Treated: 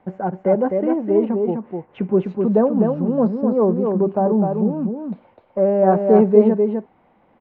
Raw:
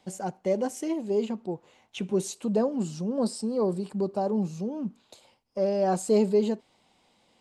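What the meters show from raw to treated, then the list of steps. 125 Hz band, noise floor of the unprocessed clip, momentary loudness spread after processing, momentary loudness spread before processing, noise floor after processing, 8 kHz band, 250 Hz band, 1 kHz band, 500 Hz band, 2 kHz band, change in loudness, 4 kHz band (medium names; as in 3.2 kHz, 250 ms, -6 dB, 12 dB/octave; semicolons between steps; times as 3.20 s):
+10.5 dB, -66 dBFS, 14 LU, 12 LU, -58 dBFS, under -35 dB, +10.5 dB, +10.5 dB, +10.5 dB, no reading, +10.0 dB, under -10 dB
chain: low-pass 1.8 kHz 24 dB/octave; on a send: delay 254 ms -4.5 dB; on the sum: trim +9 dB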